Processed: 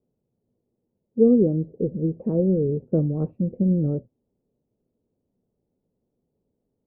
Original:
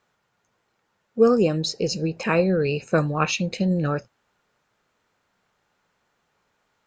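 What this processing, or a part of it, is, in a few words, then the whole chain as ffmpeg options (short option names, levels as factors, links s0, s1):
under water: -af "lowpass=f=460:w=0.5412,lowpass=f=460:w=1.3066,equalizer=f=250:t=o:w=0.2:g=5.5,volume=1.19"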